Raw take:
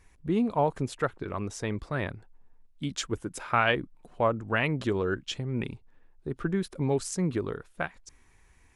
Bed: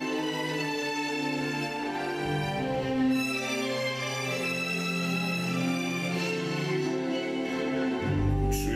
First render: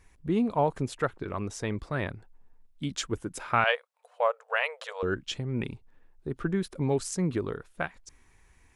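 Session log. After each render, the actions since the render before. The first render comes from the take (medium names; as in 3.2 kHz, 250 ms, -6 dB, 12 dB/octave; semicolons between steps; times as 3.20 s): 3.64–5.03 s: brick-wall FIR high-pass 450 Hz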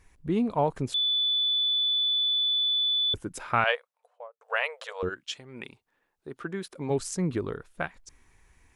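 0.94–3.14 s: bleep 3.48 kHz -22.5 dBFS; 3.74–4.41 s: studio fade out; 5.08–6.89 s: high-pass 1.5 kHz -> 350 Hz 6 dB/octave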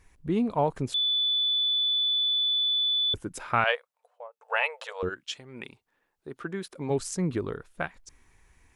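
4.25–4.88 s: small resonant body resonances 870/2600 Hz, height 11 dB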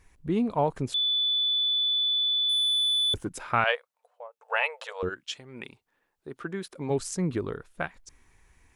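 2.49–3.29 s: waveshaping leveller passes 1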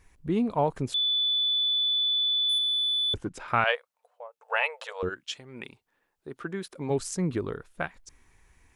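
1.26–1.97 s: hysteresis with a dead band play -59.5 dBFS; 2.58–3.48 s: distance through air 72 m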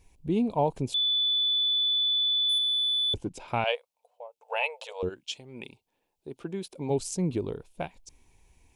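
high-order bell 1.5 kHz -13 dB 1 oct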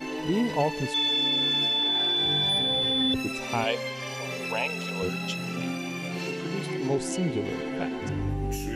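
add bed -3 dB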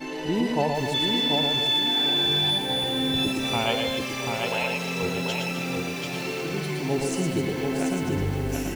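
on a send: loudspeakers at several distances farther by 39 m -4 dB, 90 m -11 dB; on the sum: bit-crushed delay 737 ms, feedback 35%, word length 7-bit, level -3.5 dB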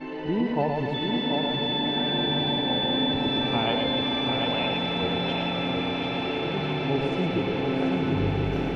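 distance through air 370 m; echo with a slow build-up 175 ms, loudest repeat 8, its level -12 dB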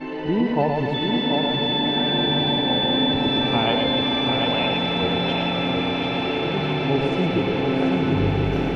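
trim +4.5 dB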